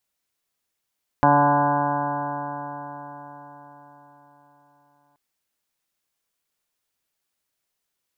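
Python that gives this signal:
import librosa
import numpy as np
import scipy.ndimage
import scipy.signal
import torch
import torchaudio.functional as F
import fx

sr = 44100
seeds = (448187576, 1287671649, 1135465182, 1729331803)

y = fx.additive_stiff(sr, length_s=3.93, hz=143.0, level_db=-23, upper_db=(2.0, -12, 1, 3.5, 6.0, 4, -6.5, -18.5, -5.5, -9), decay_s=4.73, stiffness=0.00063)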